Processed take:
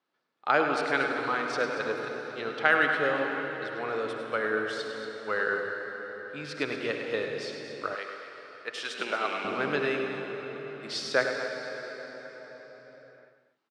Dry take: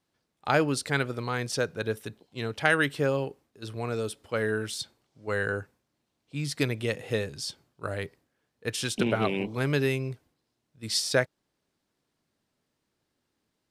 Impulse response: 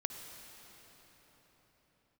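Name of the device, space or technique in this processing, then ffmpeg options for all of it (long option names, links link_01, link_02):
station announcement: -filter_complex "[0:a]highpass=330,lowpass=3800,equalizer=frequency=1300:width_type=o:width=0.47:gain=6,aecho=1:1:102|233.2:0.355|0.251[link_01];[1:a]atrim=start_sample=2205[link_02];[link_01][link_02]afir=irnorm=-1:irlink=0,asettb=1/sr,asplit=3[link_03][link_04][link_05];[link_03]atrim=end=7.954[link_06];[link_04]atrim=start=7.95:end=9.45,asetpts=PTS-STARTPTS,afade=type=in:duration=0.004:curve=qsin,afade=type=out:start_time=1.496:duration=0.004:curve=qsin,highpass=frequency=770:poles=1[link_07];[link_05]atrim=start=9.446[link_08];[link_06][link_07]acrossfade=duration=0.004:curve1=hsin:curve2=qsin[link_09];[link_09][link_08]acrossfade=duration=0.004:curve1=qsin:curve2=hsin"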